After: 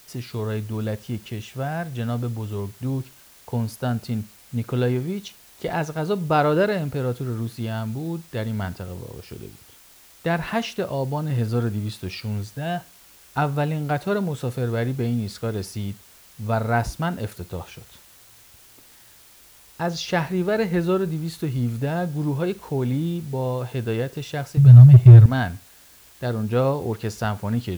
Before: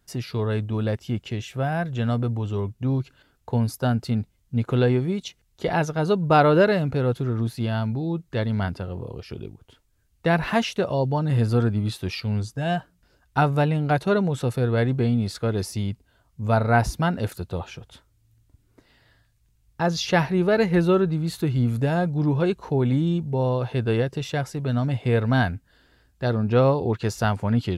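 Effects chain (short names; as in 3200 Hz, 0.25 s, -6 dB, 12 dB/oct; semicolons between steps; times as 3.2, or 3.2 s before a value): 24.57–25.26 resonant low shelf 190 Hz +13.5 dB, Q 3; requantised 8-bit, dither triangular; Schroeder reverb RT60 0.32 s, combs from 33 ms, DRR 18.5 dB; gain -2.5 dB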